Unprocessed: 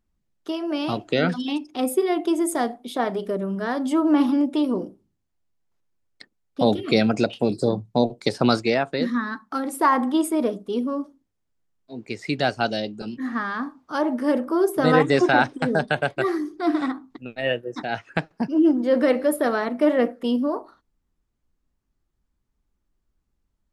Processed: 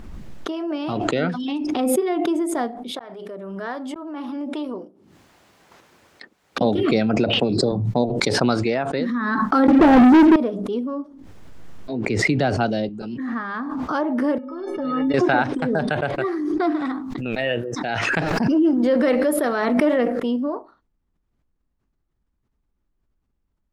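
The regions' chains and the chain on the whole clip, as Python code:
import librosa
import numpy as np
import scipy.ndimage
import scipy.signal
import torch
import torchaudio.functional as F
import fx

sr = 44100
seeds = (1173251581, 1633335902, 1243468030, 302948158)

y = fx.chain(x, sr, fx.highpass(hz=560.0, slope=6),
    fx.auto_swell(attack_ms=562.0), at=(2.91, 6.61))
y = fx.chain(y, sr, fx.lowpass(hz=4700.0, slope=12),
    fx.band_squash(depth_pct=100), at=(7.17, 7.72))
y = fx.chain(y, sr, fx.cheby_ripple(hz=840.0, ripple_db=3),
    fx.low_shelf(hz=390.0, db=11.5),
    fx.leveller(passes=5), at=(9.68, 10.36))
y = fx.chain(y, sr, fx.low_shelf(hz=490.0, db=6.5),
    fx.band_squash(depth_pct=40), at=(12.06, 12.89))
y = fx.chain(y, sr, fx.air_absorb(metres=220.0),
    fx.stiff_resonator(f0_hz=260.0, decay_s=0.32, stiffness=0.03),
    fx.band_squash(depth_pct=70), at=(14.38, 15.14))
y = fx.chain(y, sr, fx.high_shelf(hz=2700.0, db=8.5),
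    fx.sustainer(db_per_s=62.0), at=(16.85, 20.2))
y = fx.lowpass(y, sr, hz=2400.0, slope=6)
y = fx.pre_swell(y, sr, db_per_s=23.0)
y = F.gain(torch.from_numpy(y), -1.0).numpy()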